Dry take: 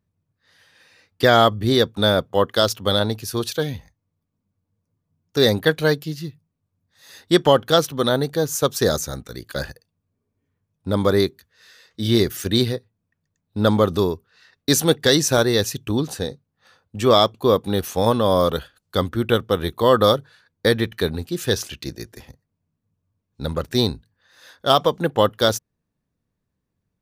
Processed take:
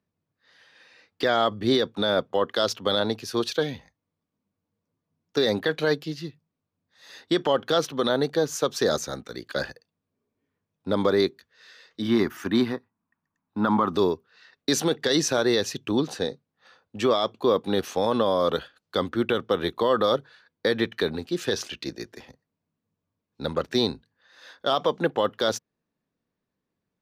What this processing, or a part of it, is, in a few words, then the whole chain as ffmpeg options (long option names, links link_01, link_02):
DJ mixer with the lows and highs turned down: -filter_complex "[0:a]asettb=1/sr,asplit=3[link_01][link_02][link_03];[link_01]atrim=end=12.024[link_04];[link_02]atrim=start=12.02:end=13.95,asetpts=PTS-STARTPTS,afade=type=in:duration=0.004:curve=qsin,afade=type=out:start_time=1.926:duration=0.004:curve=qsin,equalizer=frequency=125:width_type=o:width=1:gain=-4,equalizer=frequency=250:width_type=o:width=1:gain=5,equalizer=frequency=500:width_type=o:width=1:gain=-11,equalizer=frequency=1000:width_type=o:width=1:gain=11,equalizer=frequency=4000:width_type=o:width=1:gain=-10,equalizer=frequency=8000:width_type=o:width=1:gain=-6[link_05];[link_03]atrim=start=13.946[link_06];[link_04][link_05]acrossfade=duration=0.004:curve1=hsin:curve2=qsin[link_07];[link_07][link_06]acrossfade=duration=0.004:curve1=qsin:curve2=hsin,acrossover=split=190 6000:gain=0.2 1 0.178[link_08][link_09][link_10];[link_08][link_09][link_10]amix=inputs=3:normalize=0,alimiter=limit=-12dB:level=0:latency=1:release=43"